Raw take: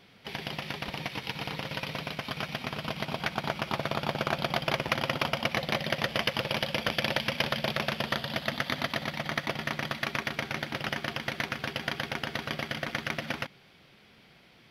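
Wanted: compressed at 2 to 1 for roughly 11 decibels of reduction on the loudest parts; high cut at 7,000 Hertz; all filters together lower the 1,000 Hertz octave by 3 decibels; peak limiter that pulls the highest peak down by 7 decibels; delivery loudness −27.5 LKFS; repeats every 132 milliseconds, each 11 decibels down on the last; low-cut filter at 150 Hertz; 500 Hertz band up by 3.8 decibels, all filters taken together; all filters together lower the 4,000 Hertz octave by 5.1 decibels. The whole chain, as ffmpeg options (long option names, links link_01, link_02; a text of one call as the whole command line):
ffmpeg -i in.wav -af "highpass=150,lowpass=7000,equalizer=frequency=500:width_type=o:gain=7,equalizer=frequency=1000:width_type=o:gain=-6.5,equalizer=frequency=4000:width_type=o:gain=-6.5,acompressor=threshold=-46dB:ratio=2,alimiter=level_in=6dB:limit=-24dB:level=0:latency=1,volume=-6dB,aecho=1:1:132|264|396:0.282|0.0789|0.0221,volume=17dB" out.wav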